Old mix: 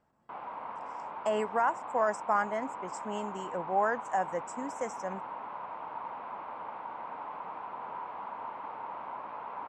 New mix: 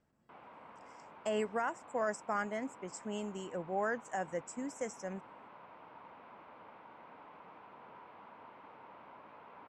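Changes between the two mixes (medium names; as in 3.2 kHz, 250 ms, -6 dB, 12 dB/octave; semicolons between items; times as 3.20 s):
background -5.5 dB; master: add peaking EQ 920 Hz -10.5 dB 1.2 oct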